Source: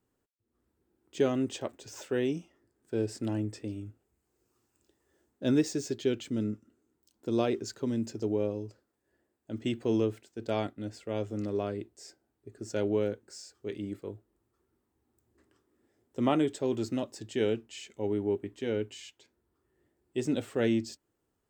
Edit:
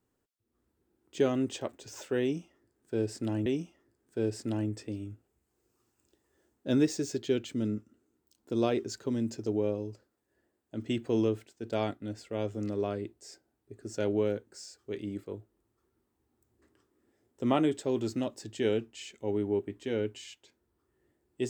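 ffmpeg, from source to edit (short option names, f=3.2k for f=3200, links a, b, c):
-filter_complex "[0:a]asplit=2[a][b];[a]atrim=end=3.462[c];[b]atrim=start=2.218[d];[c][d]acrossfade=d=0.004:c1=hsin:c2=hsin"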